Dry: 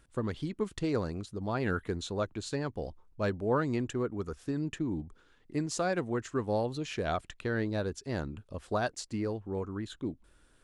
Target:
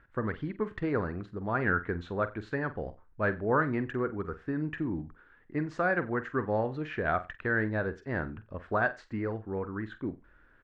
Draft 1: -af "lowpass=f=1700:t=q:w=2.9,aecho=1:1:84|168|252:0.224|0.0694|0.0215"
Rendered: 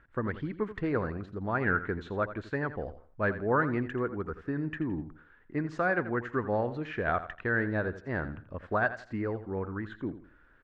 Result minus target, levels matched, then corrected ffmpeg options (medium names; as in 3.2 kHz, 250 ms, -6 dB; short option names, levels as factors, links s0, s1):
echo 38 ms late
-af "lowpass=f=1700:t=q:w=2.9,aecho=1:1:46|92|138:0.224|0.0694|0.0215"